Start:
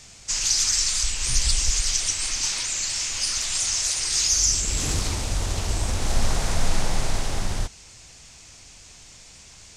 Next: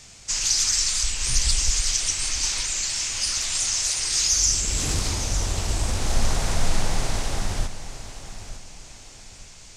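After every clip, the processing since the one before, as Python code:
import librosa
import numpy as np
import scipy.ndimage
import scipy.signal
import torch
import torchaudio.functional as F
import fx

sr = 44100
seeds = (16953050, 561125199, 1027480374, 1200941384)

y = fx.echo_feedback(x, sr, ms=906, feedback_pct=35, wet_db=-13)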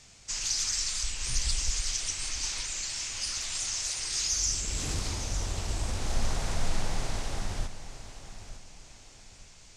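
y = fx.high_shelf(x, sr, hz=10000.0, db=-6.5)
y = y * librosa.db_to_amplitude(-7.0)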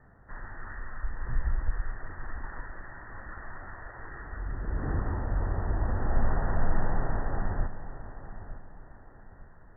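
y = scipy.signal.sosfilt(scipy.signal.cheby1(10, 1.0, 1900.0, 'lowpass', fs=sr, output='sos'), x)
y = y * librosa.db_to_amplitude(4.5)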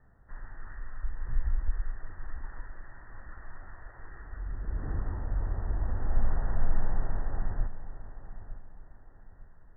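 y = fx.low_shelf(x, sr, hz=66.0, db=10.0)
y = y * librosa.db_to_amplitude(-8.0)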